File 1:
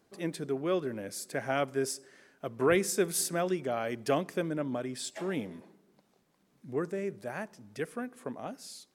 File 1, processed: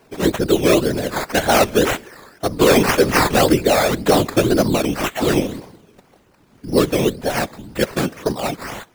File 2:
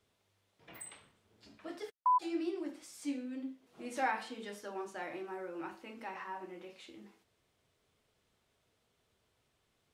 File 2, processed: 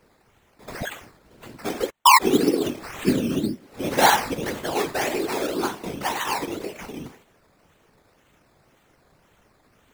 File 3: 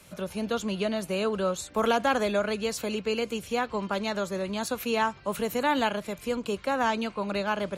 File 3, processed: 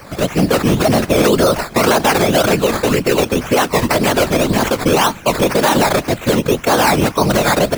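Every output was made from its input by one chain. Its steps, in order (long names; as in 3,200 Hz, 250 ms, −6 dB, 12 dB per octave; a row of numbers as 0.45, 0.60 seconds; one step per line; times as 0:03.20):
sample-and-hold swept by an LFO 12×, swing 60% 1.9 Hz
random phases in short frames
brickwall limiter −20 dBFS
normalise the peak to −3 dBFS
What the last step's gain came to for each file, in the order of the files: +17.0, +17.0, +17.0 decibels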